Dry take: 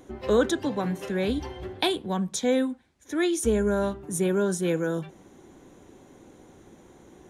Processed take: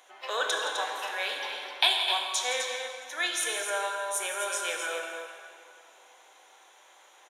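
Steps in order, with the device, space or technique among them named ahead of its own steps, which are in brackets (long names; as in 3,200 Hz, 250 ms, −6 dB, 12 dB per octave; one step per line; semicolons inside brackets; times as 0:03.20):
stadium PA (high-pass filter 230 Hz; parametric band 2,900 Hz +6 dB 0.93 octaves; loudspeakers that aren't time-aligned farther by 58 metres −12 dB, 88 metres −8 dB; convolution reverb RT60 2.3 s, pre-delay 19 ms, DRR 1.5 dB)
high-pass filter 720 Hz 24 dB per octave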